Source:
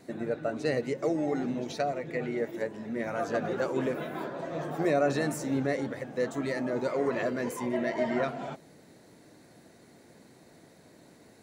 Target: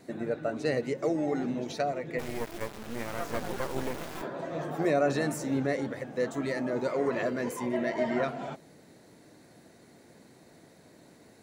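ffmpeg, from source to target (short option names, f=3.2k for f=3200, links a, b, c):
-filter_complex "[0:a]asplit=3[a][b][c];[a]afade=t=out:st=2.18:d=0.02[d];[b]acrusher=bits=4:dc=4:mix=0:aa=0.000001,afade=t=in:st=2.18:d=0.02,afade=t=out:st=4.21:d=0.02[e];[c]afade=t=in:st=4.21:d=0.02[f];[d][e][f]amix=inputs=3:normalize=0"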